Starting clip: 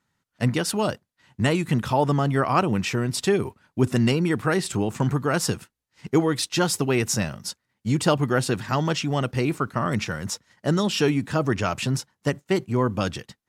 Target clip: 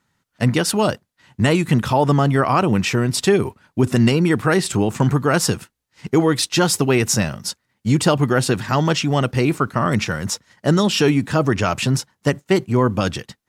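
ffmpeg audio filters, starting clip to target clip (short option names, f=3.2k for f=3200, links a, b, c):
-af "alimiter=level_in=10.5dB:limit=-1dB:release=50:level=0:latency=1,volume=-4.5dB"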